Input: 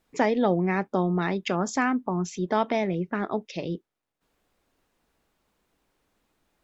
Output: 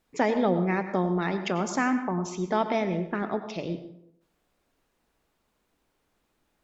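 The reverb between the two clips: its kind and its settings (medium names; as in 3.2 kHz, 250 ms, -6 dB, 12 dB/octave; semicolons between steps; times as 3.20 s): plate-style reverb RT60 0.75 s, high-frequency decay 0.6×, pre-delay 80 ms, DRR 9 dB; trim -1.5 dB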